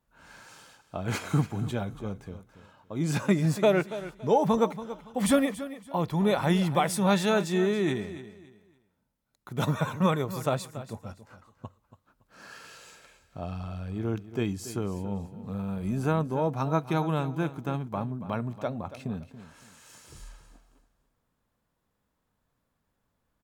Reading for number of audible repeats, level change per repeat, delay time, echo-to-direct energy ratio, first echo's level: 2, -11.5 dB, 282 ms, -13.5 dB, -14.0 dB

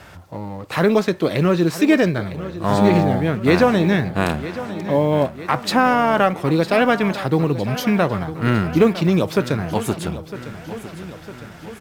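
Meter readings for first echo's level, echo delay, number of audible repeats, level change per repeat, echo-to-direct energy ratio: -14.0 dB, 956 ms, 4, -4.5 dB, -12.5 dB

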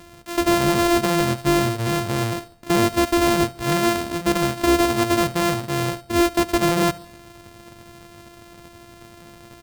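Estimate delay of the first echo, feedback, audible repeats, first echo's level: 71 ms, 48%, 3, -20.0 dB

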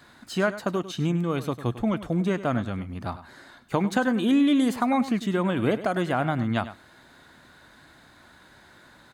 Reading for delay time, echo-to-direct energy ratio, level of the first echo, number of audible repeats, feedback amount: 100 ms, -14.0 dB, -14.0 dB, 1, no regular repeats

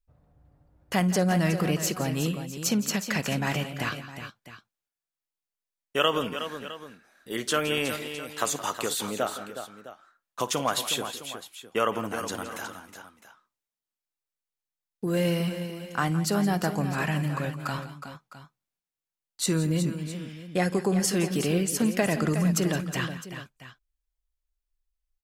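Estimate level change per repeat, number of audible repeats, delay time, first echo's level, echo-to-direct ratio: no regular repeats, 4, 55 ms, -19.5 dB, -7.5 dB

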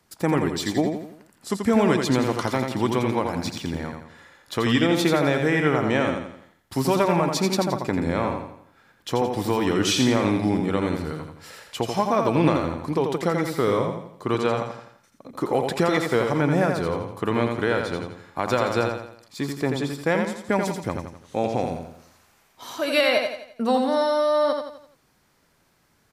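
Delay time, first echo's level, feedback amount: 85 ms, -5.0 dB, 43%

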